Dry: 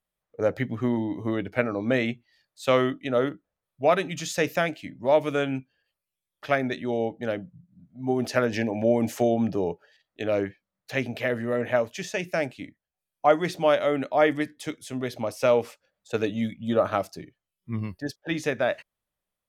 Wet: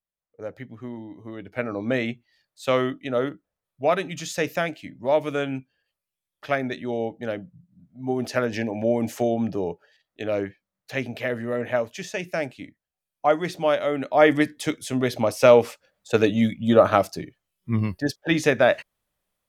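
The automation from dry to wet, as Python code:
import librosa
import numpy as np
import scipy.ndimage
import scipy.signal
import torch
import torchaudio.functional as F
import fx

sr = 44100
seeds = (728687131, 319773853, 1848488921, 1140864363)

y = fx.gain(x, sr, db=fx.line((1.32, -10.5), (1.72, -0.5), (13.97, -0.5), (14.37, 7.0)))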